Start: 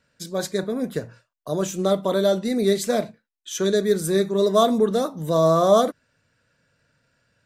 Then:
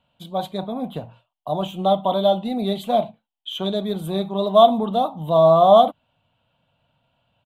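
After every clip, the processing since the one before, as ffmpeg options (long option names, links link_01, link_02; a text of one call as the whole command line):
ffmpeg -i in.wav -af "firequalizer=gain_entry='entry(210,0);entry(430,-9);entry(760,13);entry(1700,-16);entry(3100,10);entry(5200,-24);entry(12000,-8)':delay=0.05:min_phase=1" out.wav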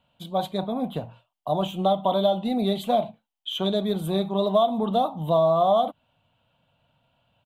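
ffmpeg -i in.wav -af "acompressor=threshold=-17dB:ratio=6" out.wav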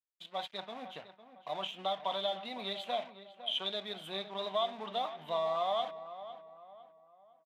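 ffmpeg -i in.wav -filter_complex "[0:a]aeval=exprs='sgn(val(0))*max(abs(val(0))-0.00531,0)':channel_layout=same,bandpass=frequency=2400:width_type=q:width=1.3:csg=0,asplit=2[link_01][link_02];[link_02]adelay=505,lowpass=frequency=2100:poles=1,volume=-12.5dB,asplit=2[link_03][link_04];[link_04]adelay=505,lowpass=frequency=2100:poles=1,volume=0.41,asplit=2[link_05][link_06];[link_06]adelay=505,lowpass=frequency=2100:poles=1,volume=0.41,asplit=2[link_07][link_08];[link_08]adelay=505,lowpass=frequency=2100:poles=1,volume=0.41[link_09];[link_01][link_03][link_05][link_07][link_09]amix=inputs=5:normalize=0" out.wav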